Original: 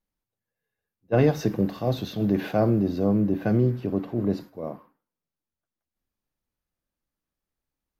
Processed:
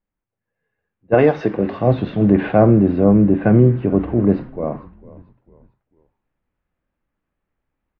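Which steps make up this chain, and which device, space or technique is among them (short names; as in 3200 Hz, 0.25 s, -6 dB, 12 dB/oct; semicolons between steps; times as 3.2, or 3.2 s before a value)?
1.14–1.78 tone controls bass -11 dB, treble +10 dB; frequency-shifting echo 0.447 s, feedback 40%, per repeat -55 Hz, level -21 dB; action camera in a waterproof case (LPF 2500 Hz 24 dB/oct; AGC gain up to 8 dB; gain +2.5 dB; AAC 48 kbps 22050 Hz)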